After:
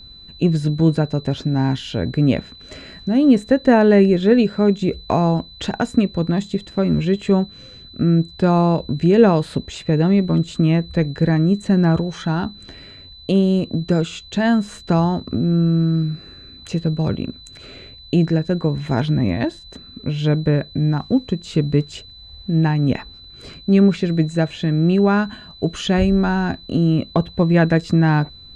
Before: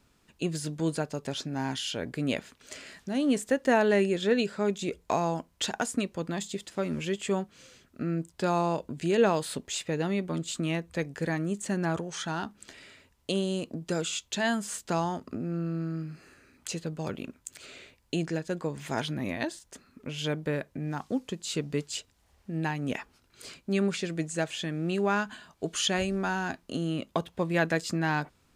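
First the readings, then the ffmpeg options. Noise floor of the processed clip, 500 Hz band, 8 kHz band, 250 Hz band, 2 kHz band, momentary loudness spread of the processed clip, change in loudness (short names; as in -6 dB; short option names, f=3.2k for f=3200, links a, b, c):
-42 dBFS, +10.0 dB, n/a, +14.5 dB, +5.0 dB, 14 LU, +12.5 dB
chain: -af "aemphasis=mode=reproduction:type=riaa,aeval=exprs='val(0)+0.00447*sin(2*PI*4000*n/s)':c=same,volume=7dB"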